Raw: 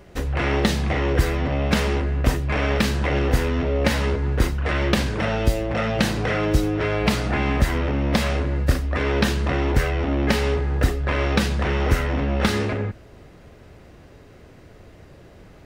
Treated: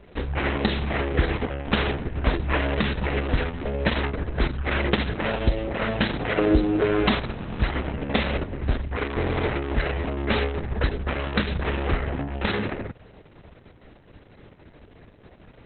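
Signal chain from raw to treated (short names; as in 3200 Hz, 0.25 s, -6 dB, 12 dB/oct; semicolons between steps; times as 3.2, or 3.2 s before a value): 2.33–2.8 comb 2.9 ms, depth 61%; 6.38–7.05 bell 370 Hz +8.5 dB 1.3 oct; 11.93–12.34 LPF 1500 Hz -> 3400 Hz 6 dB/oct; dynamic EQ 110 Hz, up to -5 dB, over -36 dBFS, Q 1.3; stuck buffer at 7.27/9.14, samples 1024, times 14; gain -1 dB; Opus 6 kbps 48000 Hz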